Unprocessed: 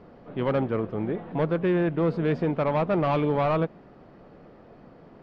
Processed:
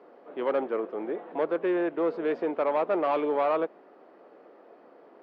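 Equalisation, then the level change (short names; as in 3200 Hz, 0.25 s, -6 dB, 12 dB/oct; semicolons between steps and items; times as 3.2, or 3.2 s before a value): HPF 330 Hz 24 dB/oct; high shelf 3300 Hz -11 dB; 0.0 dB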